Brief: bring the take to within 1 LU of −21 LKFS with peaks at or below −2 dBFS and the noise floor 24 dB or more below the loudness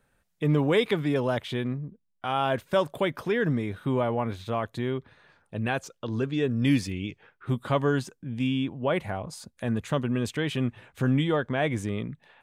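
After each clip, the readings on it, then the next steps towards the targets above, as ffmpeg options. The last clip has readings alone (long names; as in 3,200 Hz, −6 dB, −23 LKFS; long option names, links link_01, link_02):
integrated loudness −28.0 LKFS; sample peak −12.0 dBFS; target loudness −21.0 LKFS
→ -af "volume=7dB"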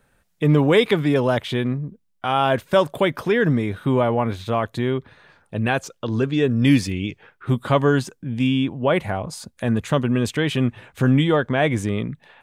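integrated loudness −21.0 LKFS; sample peak −5.0 dBFS; background noise floor −67 dBFS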